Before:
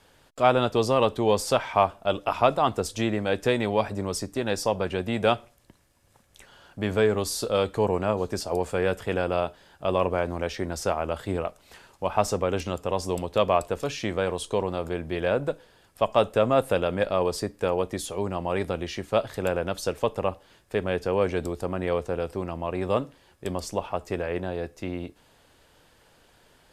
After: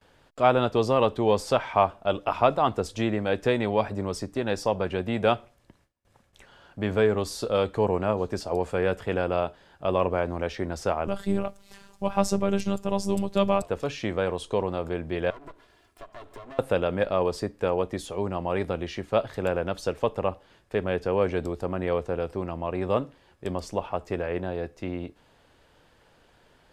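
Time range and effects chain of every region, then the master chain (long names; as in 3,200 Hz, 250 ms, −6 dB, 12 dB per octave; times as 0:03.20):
0:11.07–0:13.62: bass and treble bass +12 dB, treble +10 dB + phases set to zero 198 Hz + bit-depth reduction 12 bits, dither triangular
0:15.30–0:16.59: lower of the sound and its delayed copy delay 2.9 ms + high-shelf EQ 8,600 Hz +4.5 dB + downward compressor, threshold −40 dBFS
whole clip: noise gate with hold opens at −51 dBFS; low-pass filter 3,400 Hz 6 dB per octave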